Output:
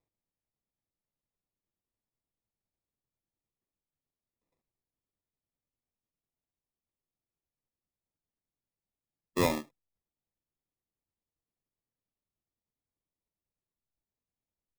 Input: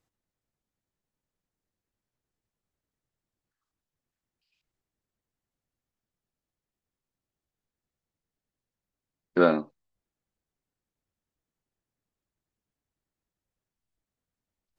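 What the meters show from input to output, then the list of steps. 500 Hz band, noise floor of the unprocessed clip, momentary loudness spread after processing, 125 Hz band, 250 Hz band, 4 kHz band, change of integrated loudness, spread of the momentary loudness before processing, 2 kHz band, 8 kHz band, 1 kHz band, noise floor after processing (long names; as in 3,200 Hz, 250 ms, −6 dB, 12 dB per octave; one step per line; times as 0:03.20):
−8.5 dB, below −85 dBFS, 9 LU, +0.5 dB, −7.0 dB, +4.0 dB, −6.5 dB, 9 LU, −4.5 dB, can't be measured, −5.5 dB, below −85 dBFS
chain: downsampling to 11,025 Hz
sample-rate reduction 1,500 Hz, jitter 0%
level −7 dB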